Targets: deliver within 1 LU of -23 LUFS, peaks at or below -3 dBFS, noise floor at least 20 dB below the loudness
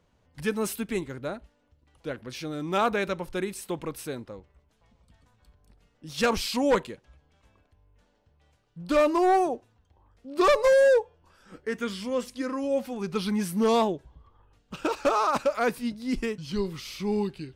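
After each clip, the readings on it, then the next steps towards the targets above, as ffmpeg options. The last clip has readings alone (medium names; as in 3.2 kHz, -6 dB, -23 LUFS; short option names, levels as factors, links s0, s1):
loudness -27.0 LUFS; peak level -16.0 dBFS; loudness target -23.0 LUFS
-> -af "volume=1.58"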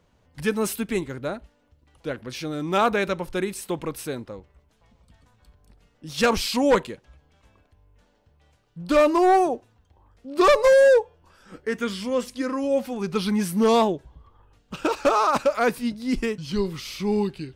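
loudness -23.0 LUFS; peak level -12.0 dBFS; noise floor -64 dBFS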